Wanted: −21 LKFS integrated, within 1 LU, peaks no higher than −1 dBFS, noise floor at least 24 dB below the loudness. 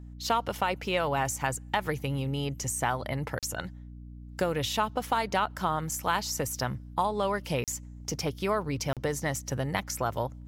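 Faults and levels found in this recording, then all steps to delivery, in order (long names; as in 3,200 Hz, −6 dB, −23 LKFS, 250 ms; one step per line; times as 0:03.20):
number of dropouts 3; longest dropout 37 ms; mains hum 60 Hz; hum harmonics up to 300 Hz; level of the hum −42 dBFS; integrated loudness −30.5 LKFS; sample peak −13.5 dBFS; target loudness −21.0 LKFS
→ repair the gap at 0:03.39/0:07.64/0:08.93, 37 ms
mains-hum notches 60/120/180/240/300 Hz
level +9.5 dB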